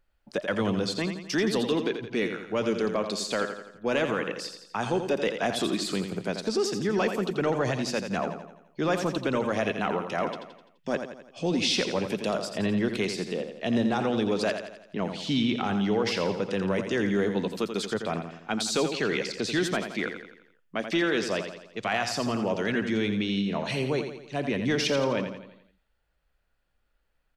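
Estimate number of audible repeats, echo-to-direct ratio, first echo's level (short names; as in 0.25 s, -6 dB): 5, -7.0 dB, -8.0 dB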